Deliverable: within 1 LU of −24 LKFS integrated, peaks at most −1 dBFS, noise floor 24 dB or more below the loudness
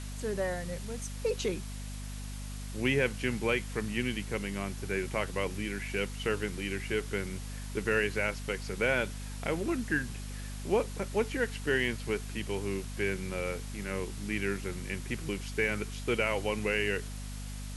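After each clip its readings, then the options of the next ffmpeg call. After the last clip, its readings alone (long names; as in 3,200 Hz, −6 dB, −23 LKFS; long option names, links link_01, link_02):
mains hum 50 Hz; hum harmonics up to 250 Hz; level of the hum −37 dBFS; background noise floor −40 dBFS; target noise floor −57 dBFS; integrated loudness −33.0 LKFS; sample peak −14.5 dBFS; target loudness −24.0 LKFS
→ -af "bandreject=frequency=50:width_type=h:width=4,bandreject=frequency=100:width_type=h:width=4,bandreject=frequency=150:width_type=h:width=4,bandreject=frequency=200:width_type=h:width=4,bandreject=frequency=250:width_type=h:width=4"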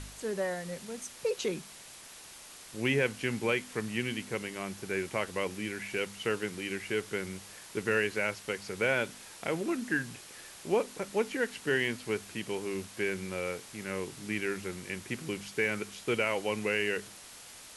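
mains hum none found; background noise floor −50 dBFS; target noise floor −58 dBFS
→ -af "afftdn=noise_reduction=8:noise_floor=-50"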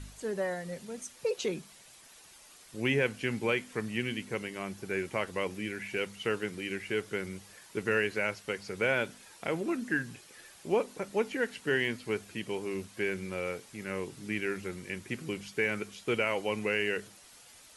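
background noise floor −56 dBFS; target noise floor −58 dBFS
→ -af "afftdn=noise_reduction=6:noise_floor=-56"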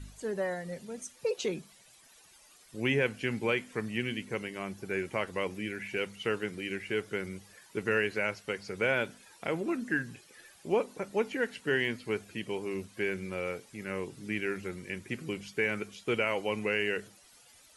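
background noise floor −59 dBFS; integrated loudness −33.5 LKFS; sample peak −15.0 dBFS; target loudness −24.0 LKFS
→ -af "volume=9.5dB"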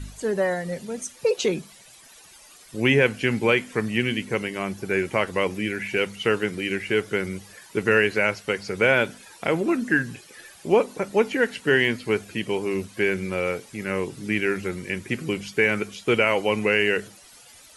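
integrated loudness −24.0 LKFS; sample peak −5.5 dBFS; background noise floor −50 dBFS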